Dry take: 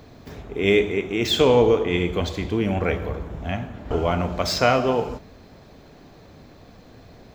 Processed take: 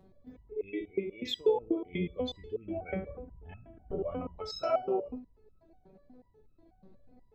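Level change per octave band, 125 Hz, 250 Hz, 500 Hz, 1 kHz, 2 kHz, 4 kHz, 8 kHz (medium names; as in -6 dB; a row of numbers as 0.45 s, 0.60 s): -18.0 dB, -12.5 dB, -12.0 dB, -14.0 dB, -20.5 dB, -14.5 dB, under -20 dB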